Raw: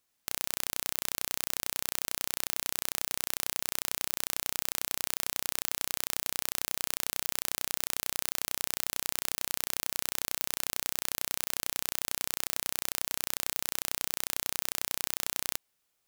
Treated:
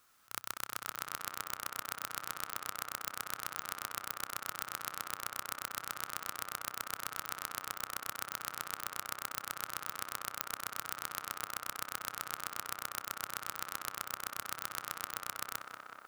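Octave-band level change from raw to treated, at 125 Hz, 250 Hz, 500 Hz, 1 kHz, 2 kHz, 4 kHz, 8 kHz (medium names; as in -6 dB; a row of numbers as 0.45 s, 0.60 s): -6.5 dB, -7.5 dB, -6.5 dB, +2.5 dB, -2.5 dB, -8.5 dB, -9.5 dB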